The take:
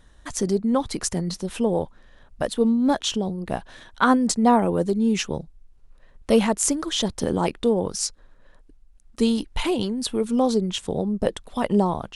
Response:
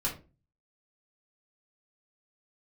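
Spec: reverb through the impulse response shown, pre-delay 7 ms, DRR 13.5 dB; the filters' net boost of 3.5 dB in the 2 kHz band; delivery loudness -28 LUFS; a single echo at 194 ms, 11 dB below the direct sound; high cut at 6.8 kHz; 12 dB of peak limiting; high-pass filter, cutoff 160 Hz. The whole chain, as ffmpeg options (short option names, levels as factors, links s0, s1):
-filter_complex "[0:a]highpass=160,lowpass=6800,equalizer=f=2000:t=o:g=5,alimiter=limit=0.178:level=0:latency=1,aecho=1:1:194:0.282,asplit=2[s0][s1];[1:a]atrim=start_sample=2205,adelay=7[s2];[s1][s2]afir=irnorm=-1:irlink=0,volume=0.119[s3];[s0][s3]amix=inputs=2:normalize=0,volume=0.708"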